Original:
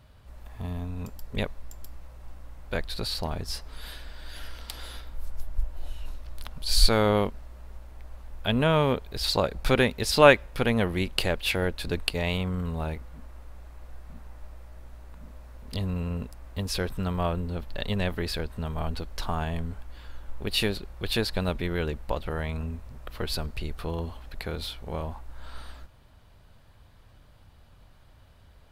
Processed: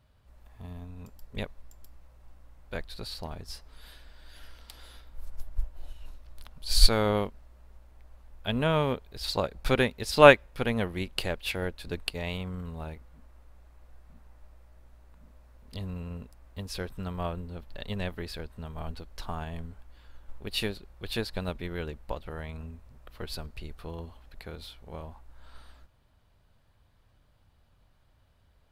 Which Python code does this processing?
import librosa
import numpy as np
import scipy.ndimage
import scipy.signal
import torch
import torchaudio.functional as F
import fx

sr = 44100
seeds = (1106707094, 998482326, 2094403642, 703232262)

y = fx.upward_expand(x, sr, threshold_db=-34.0, expansion=1.5)
y = y * 10.0 ** (2.0 / 20.0)